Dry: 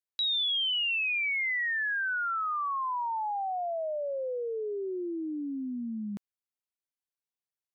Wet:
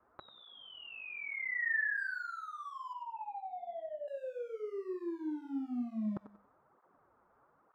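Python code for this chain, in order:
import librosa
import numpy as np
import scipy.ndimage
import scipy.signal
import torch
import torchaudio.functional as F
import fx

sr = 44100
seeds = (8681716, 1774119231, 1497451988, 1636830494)

p1 = fx.quant_dither(x, sr, seeds[0], bits=12, dither='triangular')
p2 = scipy.signal.sosfilt(scipy.signal.cheby1(4, 1.0, 1300.0, 'lowpass', fs=sr, output='sos'), p1)
p3 = np.clip(p2, -10.0 ** (-40.0 / 20.0), 10.0 ** (-40.0 / 20.0))
p4 = p2 + (p3 * 10.0 ** (-5.0 / 20.0))
p5 = fx.low_shelf(p4, sr, hz=380.0, db=-7.0)
p6 = fx.lpc_vocoder(p5, sr, seeds[1], excitation='pitch_kept', order=8, at=(2.93, 4.08))
p7 = fx.over_compress(p6, sr, threshold_db=-44.0, ratio=-1.0)
p8 = fx.echo_thinned(p7, sr, ms=94, feedback_pct=37, hz=200.0, wet_db=-11.0)
p9 = fx.flanger_cancel(p8, sr, hz=1.1, depth_ms=7.5)
y = p9 * 10.0 ** (7.0 / 20.0)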